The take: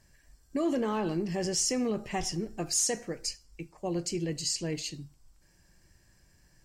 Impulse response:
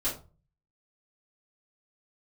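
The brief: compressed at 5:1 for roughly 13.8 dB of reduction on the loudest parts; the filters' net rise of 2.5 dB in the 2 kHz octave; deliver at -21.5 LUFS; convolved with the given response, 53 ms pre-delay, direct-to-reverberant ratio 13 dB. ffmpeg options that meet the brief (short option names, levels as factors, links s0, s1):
-filter_complex "[0:a]equalizer=f=2000:t=o:g=3,acompressor=threshold=0.00891:ratio=5,asplit=2[s0][s1];[1:a]atrim=start_sample=2205,adelay=53[s2];[s1][s2]afir=irnorm=-1:irlink=0,volume=0.112[s3];[s0][s3]amix=inputs=2:normalize=0,volume=11.9"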